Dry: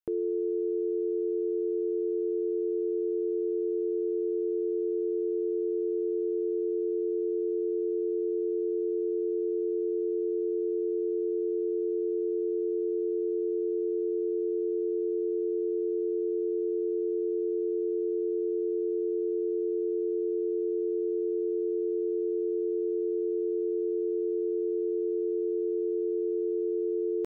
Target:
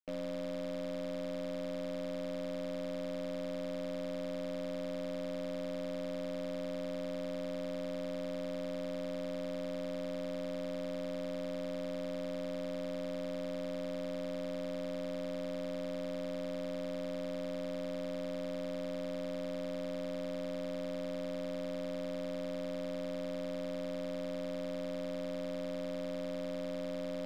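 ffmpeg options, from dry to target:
-filter_complex "[0:a]equalizer=f=125:t=o:w=0.33:g=-8,equalizer=f=200:t=o:w=0.33:g=-9,equalizer=f=400:t=o:w=0.33:g=5,aeval=exprs='val(0)*sin(2*PI*170*n/s)':c=same,acrossover=split=280[a][b];[a]asoftclip=type=tanh:threshold=-38.5dB[c];[c][b]amix=inputs=2:normalize=0,aeval=exprs='0.0531*(cos(1*acos(clip(val(0)/0.0531,-1,1)))-cos(1*PI/2))+0.0075*(cos(5*acos(clip(val(0)/0.0531,-1,1)))-cos(5*PI/2))+0.00668*(cos(6*acos(clip(val(0)/0.0531,-1,1)))-cos(6*PI/2))+0.00531*(cos(7*acos(clip(val(0)/0.0531,-1,1)))-cos(7*PI/2))':c=same,volume=-8dB"

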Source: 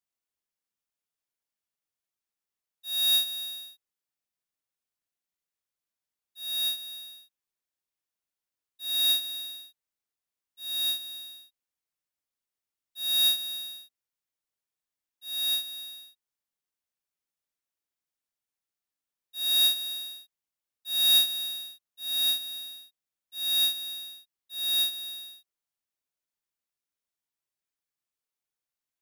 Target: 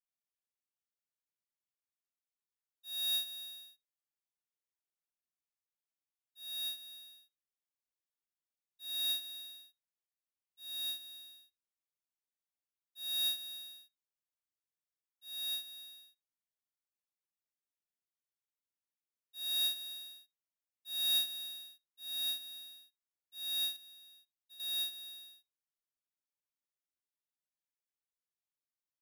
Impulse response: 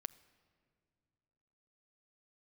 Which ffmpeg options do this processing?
-filter_complex "[0:a]asettb=1/sr,asplit=3[a][b][c];[a]atrim=end=23.764[d];[b]atrim=start=23.76:end=24.6,asetpts=PTS-STARTPTS,afade=t=in:d=0.004:c=qsin,afade=t=out:st=0.836:d=0.004:c=qsin,acompressor=threshold=-46dB:ratio=10[e];[c]atrim=start=24.596[f];[d][e]acrossfade=d=0.004:c1=hsin:c2=qsin[g];[g][f]acrossfade=d=0.004:c1=qsin:c2=hsin[h];[1:a]atrim=start_sample=2205,atrim=end_sample=3528[i];[h][i]afir=irnorm=-1:irlink=0,volume=-7.5dB"

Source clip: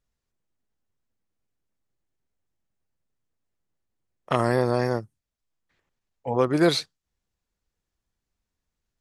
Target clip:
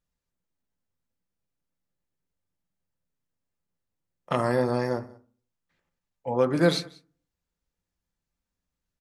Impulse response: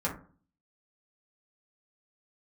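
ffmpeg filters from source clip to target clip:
-filter_complex "[0:a]aecho=1:1:187:0.0631,asplit=2[a][b];[1:a]atrim=start_sample=2205[c];[b][c]afir=irnorm=-1:irlink=0,volume=-11dB[d];[a][d]amix=inputs=2:normalize=0,volume=-5.5dB"

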